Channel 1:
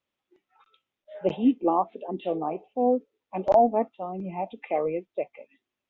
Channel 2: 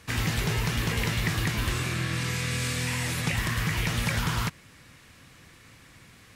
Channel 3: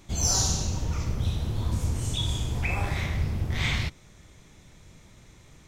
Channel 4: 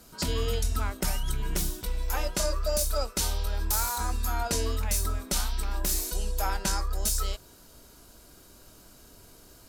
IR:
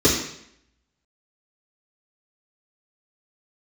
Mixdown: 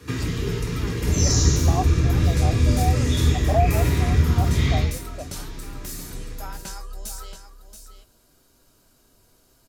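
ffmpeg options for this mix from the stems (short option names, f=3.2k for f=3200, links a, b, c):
-filter_complex "[0:a]asplit=3[a][b][c];[a]bandpass=f=730:t=q:w=8,volume=0dB[d];[b]bandpass=f=1.09k:t=q:w=8,volume=-6dB[e];[c]bandpass=f=2.44k:t=q:w=8,volume=-9dB[f];[d][e][f]amix=inputs=3:normalize=0,volume=1.5dB[g];[1:a]acompressor=threshold=-35dB:ratio=6,volume=-3dB,asplit=2[h][i];[i]volume=-11.5dB[j];[2:a]adelay=950,volume=-15dB,asplit=2[k][l];[l]volume=-4dB[m];[3:a]flanger=delay=7.2:depth=1:regen=-57:speed=0.92:shape=triangular,volume=-3dB,asplit=2[n][o];[o]volume=-10dB[p];[4:a]atrim=start_sample=2205[q];[j][m]amix=inputs=2:normalize=0[r];[r][q]afir=irnorm=-1:irlink=0[s];[p]aecho=0:1:678:1[t];[g][h][k][n][s][t]amix=inputs=6:normalize=0,acrossover=split=400[u][v];[v]acompressor=threshold=-19dB:ratio=6[w];[u][w]amix=inputs=2:normalize=0"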